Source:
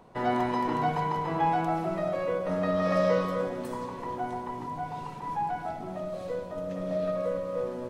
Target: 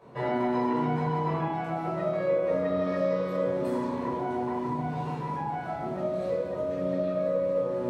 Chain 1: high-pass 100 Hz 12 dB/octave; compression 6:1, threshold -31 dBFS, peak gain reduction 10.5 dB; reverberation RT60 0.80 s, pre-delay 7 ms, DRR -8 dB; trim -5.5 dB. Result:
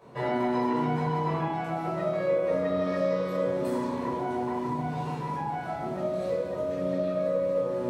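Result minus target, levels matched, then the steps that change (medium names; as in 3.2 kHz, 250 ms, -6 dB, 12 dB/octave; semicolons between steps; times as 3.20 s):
8 kHz band +5.0 dB
add after compression: treble shelf 4 kHz -6.5 dB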